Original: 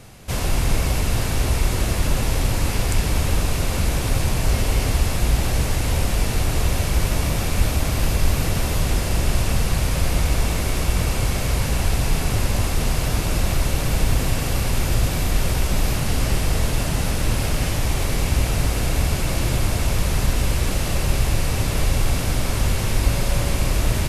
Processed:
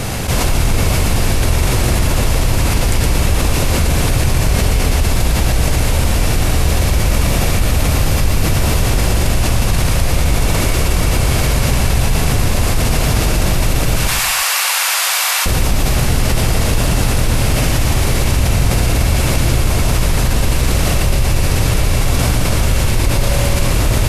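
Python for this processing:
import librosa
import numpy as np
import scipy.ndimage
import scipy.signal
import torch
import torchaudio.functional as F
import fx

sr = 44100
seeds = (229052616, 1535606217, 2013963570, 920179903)

y = fx.highpass(x, sr, hz=910.0, slope=24, at=(13.96, 15.46))
y = fx.echo_feedback(y, sr, ms=117, feedback_pct=32, wet_db=-4.5)
y = fx.env_flatten(y, sr, amount_pct=70)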